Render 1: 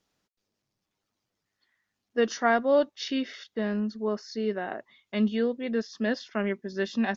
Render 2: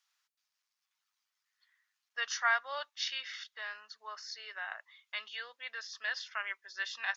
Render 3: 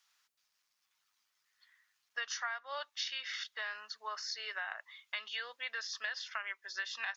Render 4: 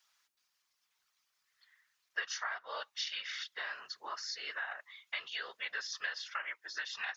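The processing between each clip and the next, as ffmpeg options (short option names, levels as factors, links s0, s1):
-af "highpass=f=1100:w=0.5412,highpass=f=1100:w=1.3066"
-af "acompressor=threshold=0.00891:ratio=8,volume=1.88"
-af "afftfilt=real='hypot(re,im)*cos(2*PI*random(0))':imag='hypot(re,im)*sin(2*PI*random(1))':win_size=512:overlap=0.75,volume=2"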